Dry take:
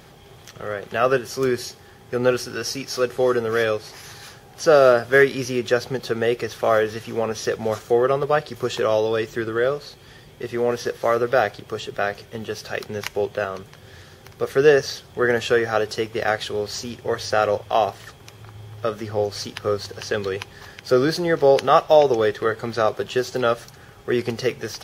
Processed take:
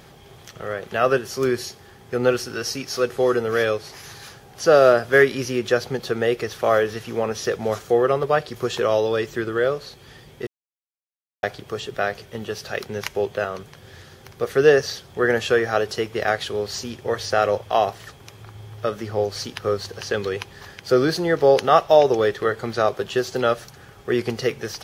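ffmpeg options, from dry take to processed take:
ffmpeg -i in.wav -filter_complex "[0:a]asplit=3[link_01][link_02][link_03];[link_01]atrim=end=10.47,asetpts=PTS-STARTPTS,afade=type=out:start_time=10.466:duration=0.004:curve=hsin[link_04];[link_02]atrim=start=10.47:end=11.43,asetpts=PTS-STARTPTS,volume=0[link_05];[link_03]atrim=start=11.43,asetpts=PTS-STARTPTS,afade=type=in:duration=0.004:curve=hsin[link_06];[link_04][link_05][link_06]concat=n=3:v=0:a=1" out.wav

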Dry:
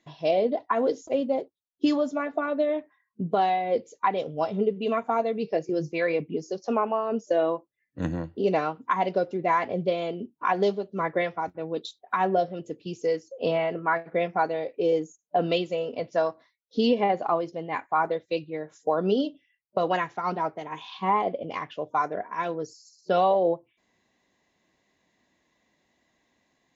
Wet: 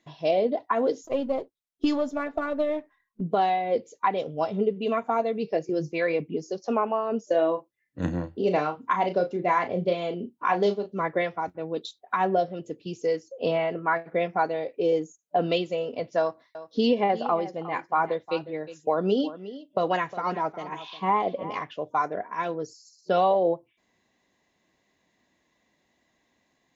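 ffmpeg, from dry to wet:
ffmpeg -i in.wav -filter_complex "[0:a]asettb=1/sr,asplit=3[link_01][link_02][link_03];[link_01]atrim=end=1.044[link_04];[link_02]atrim=start=1.04:end=3.21,asetpts=PTS-STARTPTS,afade=type=in:duration=0.004:curve=qsin,afade=type=out:start_time=2.166:duration=0.004:curve=qsin,aeval=exprs='if(lt(val(0),0),0.708*val(0),val(0))':channel_layout=same[link_05];[link_03]atrim=start=3.206[link_06];[link_04][link_05]acrossfade=duration=0.004:curve1=hsin:curve2=qsin[link_07];[link_07][link_06]acrossfade=duration=0.004:curve1=qsin:curve2=hsin,asettb=1/sr,asplit=3[link_08][link_09][link_10];[link_08]atrim=end=7.264[link_11];[link_09]atrim=start=7.26:end=10.95,asetpts=PTS-STARTPTS,afade=type=in:duration=0.004:curve=qsin,afade=type=out:start_time=3.686:duration=0.004:curve=qsin,asplit=2[link_12][link_13];[link_13]adelay=34,volume=-8.5dB[link_14];[link_12][link_14]amix=inputs=2:normalize=0,atrim=end_sample=162729[link_15];[link_10]atrim=start=10.946[link_16];[link_11][link_15]acrossfade=duration=0.004:curve1=hsin:curve2=qsin[link_17];[link_17][link_16]acrossfade=duration=0.004:curve1=qsin:curve2=hsin,asettb=1/sr,asplit=3[link_18][link_19][link_20];[link_18]atrim=end=16.194[link_21];[link_19]atrim=start=16.19:end=21.62,asetpts=PTS-STARTPTS,afade=type=in:duration=0.004:curve=qsin,afade=type=out:start_time=5.426:duration=0.004:curve=qsin,aecho=1:1:359:0.178,atrim=end_sample=239463[link_22];[link_20]atrim=start=21.616[link_23];[link_21][link_22]acrossfade=duration=0.004:curve1=hsin:curve2=qsin[link_24];[link_24][link_23]acrossfade=duration=0.004:curve1=qsin:curve2=hsin" out.wav

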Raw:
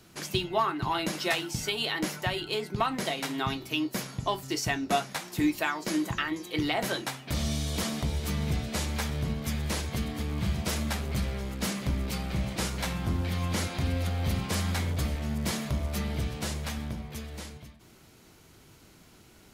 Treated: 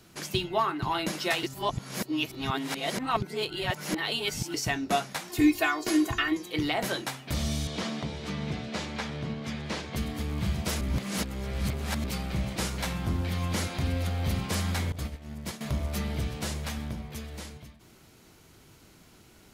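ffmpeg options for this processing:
ffmpeg -i in.wav -filter_complex "[0:a]asettb=1/sr,asplit=3[link_01][link_02][link_03];[link_01]atrim=end=5.294[link_04];[link_02]atrim=start=5.29:end=6.37,asetpts=PTS-STARTPTS,afade=type=in:duration=0.004:curve=qsin,afade=type=out:start_time=1.076:duration=0.004:curve=qsin,aecho=1:1:2.8:0.95,atrim=end_sample=47628[link_05];[link_03]atrim=start=6.366[link_06];[link_04][link_05]acrossfade=duration=0.004:curve1=hsin:curve2=qsin[link_07];[link_07][link_06]acrossfade=duration=0.004:curve1=qsin:curve2=hsin,asettb=1/sr,asplit=3[link_08][link_09][link_10];[link_08]atrim=end=7.674[link_11];[link_09]atrim=start=7.67:end=9.96,asetpts=PTS-STARTPTS,afade=type=in:duration=0.004:curve=qsin,afade=type=out:start_time=2.286:duration=0.004:curve=qsin,highpass=140,lowpass=4700[link_12];[link_10]atrim=start=9.956[link_13];[link_11][link_12]acrossfade=duration=0.004:curve1=hsin:curve2=qsin[link_14];[link_14][link_13]acrossfade=duration=0.004:curve1=qsin:curve2=hsin,asettb=1/sr,asplit=3[link_15][link_16][link_17];[link_15]atrim=end=14.924[link_18];[link_16]atrim=start=14.92:end=15.61,asetpts=PTS-STARTPTS,afade=type=in:duration=0.004:curve=qsin,afade=type=out:start_time=0.686:duration=0.004:curve=qsin,agate=range=-33dB:threshold=-24dB:ratio=3:release=100:detection=peak[link_19];[link_17]atrim=start=15.606[link_20];[link_18][link_19]acrossfade=duration=0.004:curve1=hsin:curve2=qsin[link_21];[link_21][link_20]acrossfade=duration=0.004:curve1=qsin:curve2=hsin,asplit=5[link_22][link_23][link_24][link_25][link_26];[link_22]atrim=end=1.432[link_27];[link_23]atrim=start=1.428:end=4.542,asetpts=PTS-STARTPTS,areverse[link_28];[link_24]atrim=start=4.538:end=10.812[link_29];[link_25]atrim=start=10.808:end=12.042,asetpts=PTS-STARTPTS,areverse[link_30];[link_26]atrim=start=12.038[link_31];[link_27][link_28]acrossfade=duration=0.004:curve1=hsin:curve2=hsin[link_32];[link_32][link_29]acrossfade=duration=0.004:curve1=hsin:curve2=hsin[link_33];[link_33][link_30]acrossfade=duration=0.004:curve1=hsin:curve2=hsin[link_34];[link_34][link_31]acrossfade=duration=0.004:curve1=hsin:curve2=hsin" out.wav

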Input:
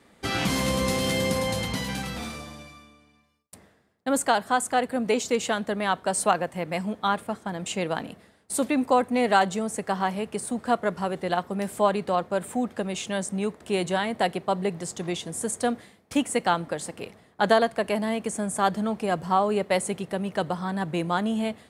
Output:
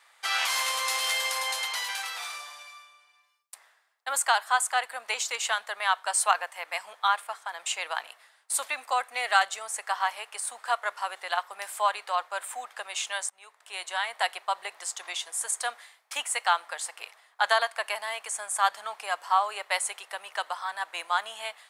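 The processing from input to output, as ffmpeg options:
ffmpeg -i in.wav -filter_complex "[0:a]asettb=1/sr,asplit=3[link_01][link_02][link_03];[link_01]atrim=end=8.744[link_04];[link_02]atrim=start=8.74:end=9.61,asetpts=PTS-STARTPTS,afade=type=in:duration=0.004:curve=qsin,afade=type=out:start_time=0.866:duration=0.004:curve=qsin,equalizer=frequency=940:width_type=o:width=0.22:gain=-8[link_05];[link_03]atrim=start=9.606[link_06];[link_04][link_05]acrossfade=duration=0.004:curve1=hsin:curve2=qsin[link_07];[link_07][link_06]acrossfade=duration=0.004:curve1=qsin:curve2=hsin,asplit=2[link_08][link_09];[link_08]atrim=end=13.3,asetpts=PTS-STARTPTS,afade=type=out:start_time=13.296:duration=0.004:curve=hsin:silence=0.1[link_10];[link_09]atrim=start=13.3,asetpts=PTS-STARTPTS,afade=type=in:duration=0.91:silence=0.1[link_11];[link_10][link_11]concat=n=2:v=0:a=1,highpass=frequency=880:width=0.5412,highpass=frequency=880:width=1.3066,volume=2.5dB" out.wav

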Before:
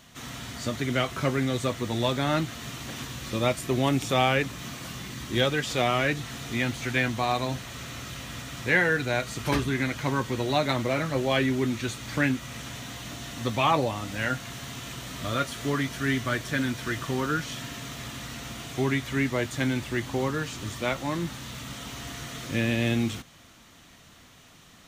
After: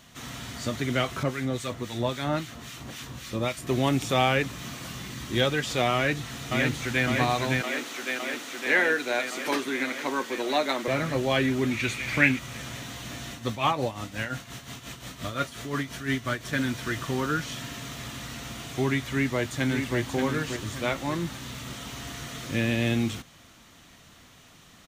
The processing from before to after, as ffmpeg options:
ffmpeg -i in.wav -filter_complex "[0:a]asettb=1/sr,asplit=3[link_01][link_02][link_03];[link_01]atrim=end=1.234[link_04];[link_02]atrim=start=1.23:end=3.67,asetpts=PTS-STARTPTS,afade=type=in:duration=0.004:curve=qsin,afade=type=out:start_time=2.436:duration=0.004:curve=qsin,acrossover=split=1300[link_05][link_06];[link_05]aeval=exprs='val(0)*(1-0.7/2+0.7/2*cos(2*PI*3.7*n/s))':channel_layout=same[link_07];[link_06]aeval=exprs='val(0)*(1-0.7/2-0.7/2*cos(2*PI*3.7*n/s))':channel_layout=same[link_08];[link_07][link_08]amix=inputs=2:normalize=0[link_09];[link_03]atrim=start=3.666[link_10];[link_04][link_09]acrossfade=duration=0.004:curve1=hsin:curve2=qsin[link_11];[link_11][link_10]acrossfade=duration=0.004:curve1=qsin:curve2=hsin,asplit=2[link_12][link_13];[link_13]afade=type=in:start_time=5.95:duration=0.01,afade=type=out:start_time=7.06:duration=0.01,aecho=0:1:560|1120|1680|2240|2800|3360|3920|4480|5040|5600|6160|6720:0.707946|0.566357|0.453085|0.362468|0.289975|0.23198|0.185584|0.148467|0.118774|0.0950189|0.0760151|0.0608121[link_14];[link_12][link_14]amix=inputs=2:normalize=0,asettb=1/sr,asplit=3[link_15][link_16][link_17];[link_15]atrim=end=7.614[link_18];[link_16]atrim=start=7.61:end=10.88,asetpts=PTS-STARTPTS,afade=type=in:duration=0.004:curve=qsin,afade=type=out:start_time=3.266:duration=0.004:curve=qsin,highpass=frequency=270:width=0.5412,highpass=frequency=270:width=1.3066[link_19];[link_17]atrim=start=10.876[link_20];[link_18][link_19]acrossfade=duration=0.004:curve1=hsin:curve2=qsin[link_21];[link_21][link_20]acrossfade=duration=0.004:curve1=qsin:curve2=hsin,asettb=1/sr,asplit=3[link_22][link_23][link_24];[link_22]atrim=end=11.714[link_25];[link_23]atrim=start=11.71:end=12.39,asetpts=PTS-STARTPTS,afade=type=in:duration=0.004:curve=qsin,afade=type=out:start_time=0.676:duration=0.004:curve=qsin,equalizer=frequency=2300:width=2.7:gain=13.5[link_26];[link_24]atrim=start=12.386[link_27];[link_25][link_26]acrossfade=duration=0.004:curve1=hsin:curve2=qsin[link_28];[link_28][link_27]acrossfade=duration=0.004:curve1=qsin:curve2=hsin,asettb=1/sr,asplit=3[link_29][link_30][link_31];[link_29]atrim=end=13.324[link_32];[link_30]atrim=start=13.32:end=16.53,asetpts=PTS-STARTPTS,afade=type=in:duration=0.004:curve=qsin,afade=type=out:start_time=3.206:duration=0.004:curve=qsin,tremolo=f=5.7:d=0.67[link_33];[link_31]atrim=start=16.526[link_34];[link_32][link_33]acrossfade=duration=0.004:curve1=hsin:curve2=qsin[link_35];[link_35][link_34]acrossfade=duration=0.004:curve1=qsin:curve2=hsin,asplit=2[link_36][link_37];[link_37]afade=type=in:start_time=19.11:duration=0.01,afade=type=out:start_time=19.98:duration=0.01,aecho=0:1:580|1160|1740|2320|2900:0.530884|0.212354|0.0849415|0.0339766|0.0135906[link_38];[link_36][link_38]amix=inputs=2:normalize=0" out.wav

